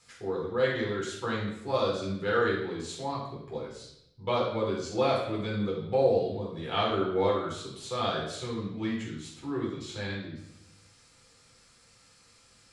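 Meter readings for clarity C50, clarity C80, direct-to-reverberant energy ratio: 3.0 dB, 6.0 dB, −5.5 dB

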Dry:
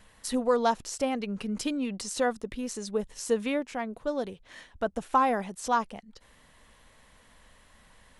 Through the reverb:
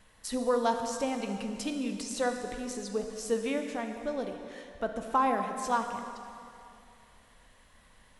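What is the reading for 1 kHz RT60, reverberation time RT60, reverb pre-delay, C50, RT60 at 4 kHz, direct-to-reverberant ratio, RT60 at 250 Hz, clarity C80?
2.7 s, 2.6 s, 8 ms, 6.0 dB, 2.4 s, 5.0 dB, 2.7 s, 6.5 dB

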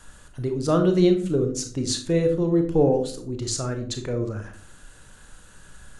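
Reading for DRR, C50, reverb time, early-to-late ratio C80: 5.0 dB, 9.0 dB, 0.45 s, 14.0 dB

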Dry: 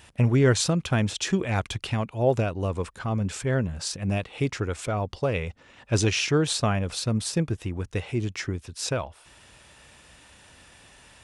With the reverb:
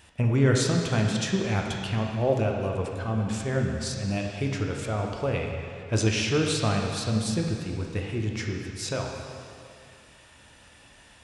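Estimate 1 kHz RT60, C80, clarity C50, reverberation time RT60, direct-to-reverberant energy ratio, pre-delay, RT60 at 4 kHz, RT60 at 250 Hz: 2.4 s, 3.5 dB, 2.5 dB, 2.4 s, 0.5 dB, 5 ms, 2.2 s, 2.5 s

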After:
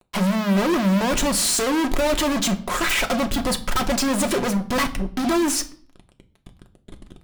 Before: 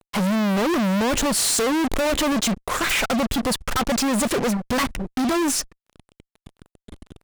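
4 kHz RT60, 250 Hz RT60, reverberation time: 0.45 s, 0.75 s, 0.50 s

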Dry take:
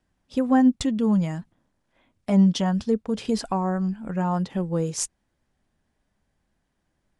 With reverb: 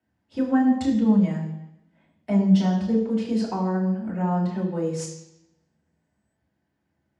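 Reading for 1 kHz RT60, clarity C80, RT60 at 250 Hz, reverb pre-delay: 0.90 s, 8.5 dB, 0.85 s, 3 ms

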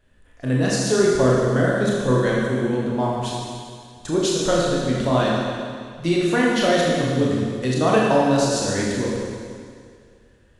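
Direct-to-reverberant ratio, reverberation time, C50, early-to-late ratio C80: −4.5 dB, 2.1 s, −1.5 dB, 0.5 dB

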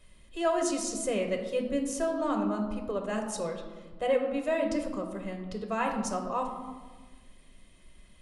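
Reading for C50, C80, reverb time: 6.0 dB, 8.0 dB, 1.4 s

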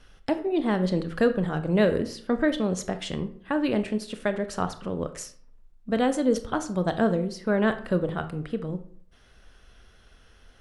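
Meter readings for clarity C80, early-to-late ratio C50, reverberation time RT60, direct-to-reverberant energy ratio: 17.0 dB, 13.0 dB, 0.55 s, 9.5 dB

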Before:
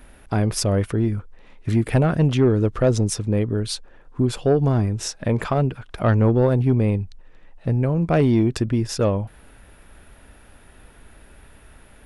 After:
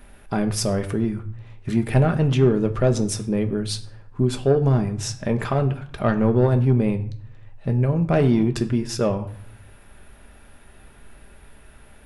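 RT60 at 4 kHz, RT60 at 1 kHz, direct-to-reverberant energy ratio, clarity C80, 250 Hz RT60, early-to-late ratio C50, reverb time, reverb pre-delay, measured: 0.40 s, 0.65 s, 6.0 dB, 17.0 dB, 0.90 s, 14.5 dB, 0.60 s, 5 ms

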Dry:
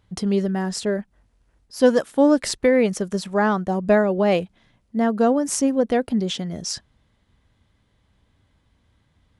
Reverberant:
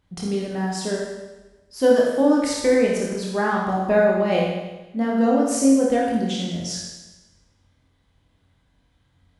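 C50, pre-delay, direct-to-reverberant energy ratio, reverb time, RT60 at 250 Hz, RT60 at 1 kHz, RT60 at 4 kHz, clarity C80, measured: 0.5 dB, 22 ms, −3.5 dB, 1.1 s, 1.1 s, 1.1 s, 1.1 s, 3.0 dB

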